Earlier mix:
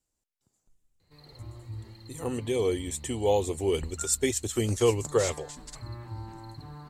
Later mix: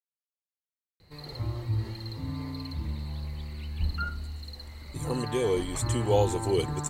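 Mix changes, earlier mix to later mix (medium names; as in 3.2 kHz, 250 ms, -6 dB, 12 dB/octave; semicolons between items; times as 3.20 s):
speech: entry +2.85 s; background +10.5 dB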